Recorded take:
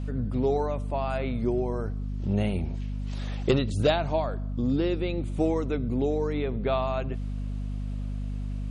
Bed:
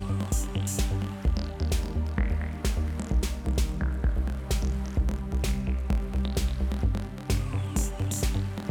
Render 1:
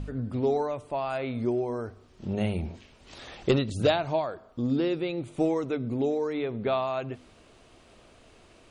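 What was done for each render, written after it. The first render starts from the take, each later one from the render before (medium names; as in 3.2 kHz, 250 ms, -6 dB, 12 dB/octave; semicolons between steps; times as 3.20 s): de-hum 50 Hz, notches 5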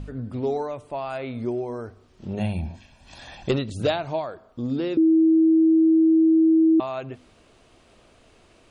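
2.39–3.49 s: comb 1.2 ms, depth 68%; 4.97–6.80 s: bleep 322 Hz -13.5 dBFS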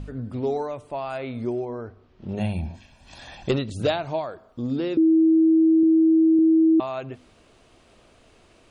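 1.65–2.29 s: distance through air 200 m; 5.83–6.39 s: high-pass 98 Hz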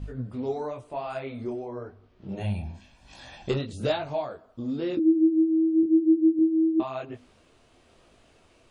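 detune thickener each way 34 cents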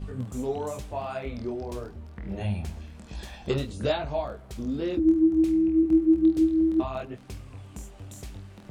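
add bed -13.5 dB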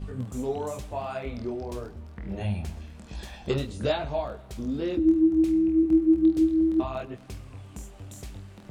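thinning echo 124 ms, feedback 62%, level -22.5 dB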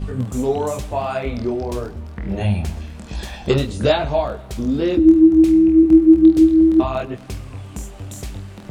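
trim +10 dB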